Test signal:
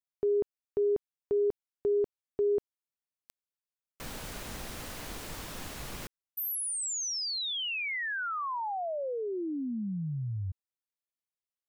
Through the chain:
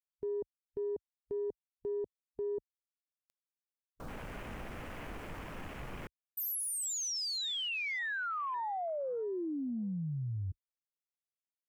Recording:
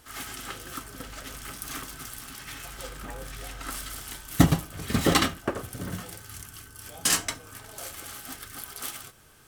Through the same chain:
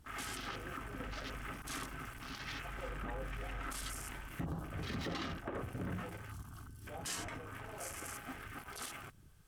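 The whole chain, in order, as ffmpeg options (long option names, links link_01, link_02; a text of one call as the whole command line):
ffmpeg -i in.wav -af "acompressor=threshold=-34dB:ratio=12:attack=0.25:release=50:knee=6:detection=rms,afwtdn=0.00355,volume=1dB" out.wav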